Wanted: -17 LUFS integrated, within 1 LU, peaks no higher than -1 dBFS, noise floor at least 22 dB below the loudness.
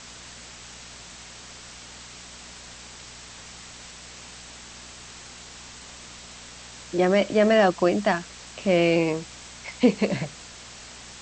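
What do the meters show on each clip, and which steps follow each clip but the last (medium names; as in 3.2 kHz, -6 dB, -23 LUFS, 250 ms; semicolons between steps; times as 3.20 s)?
hum 60 Hz; highest harmonic 240 Hz; hum level -49 dBFS; noise floor -44 dBFS; noise floor target -45 dBFS; loudness -22.5 LUFS; peak level -7.5 dBFS; loudness target -17.0 LUFS
-> de-hum 60 Hz, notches 4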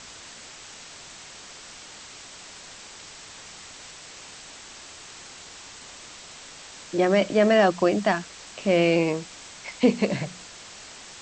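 hum not found; noise floor -44 dBFS; noise floor target -45 dBFS
-> noise print and reduce 6 dB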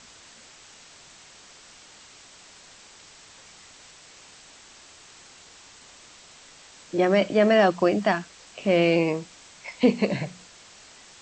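noise floor -50 dBFS; loudness -23.0 LUFS; peak level -7.5 dBFS; loudness target -17.0 LUFS
-> trim +6 dB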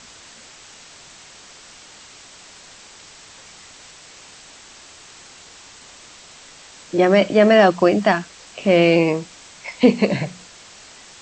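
loudness -17.0 LUFS; peak level -1.5 dBFS; noise floor -44 dBFS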